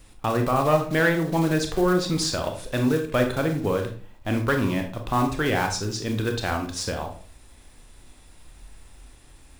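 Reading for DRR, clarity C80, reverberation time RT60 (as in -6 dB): 4.0 dB, 13.5 dB, 0.45 s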